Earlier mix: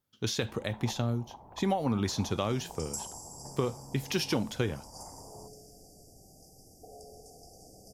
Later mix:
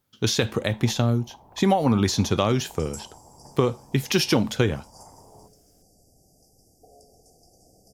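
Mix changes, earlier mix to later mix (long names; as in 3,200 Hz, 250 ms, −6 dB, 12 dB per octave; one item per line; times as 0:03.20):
speech +9.0 dB
second sound: send −11.0 dB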